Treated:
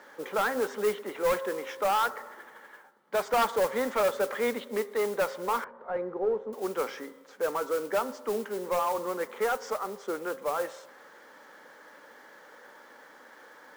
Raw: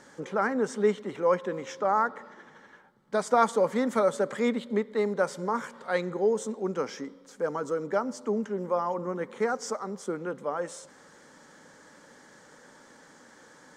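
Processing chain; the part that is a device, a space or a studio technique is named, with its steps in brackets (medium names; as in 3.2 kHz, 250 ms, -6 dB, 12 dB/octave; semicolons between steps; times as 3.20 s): carbon microphone (band-pass 440–3200 Hz; saturation -24 dBFS, distortion -11 dB; modulation noise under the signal 17 dB); de-hum 134.5 Hz, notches 15; 5.64–6.53 s: Bessel low-pass 750 Hz, order 2; trim +4 dB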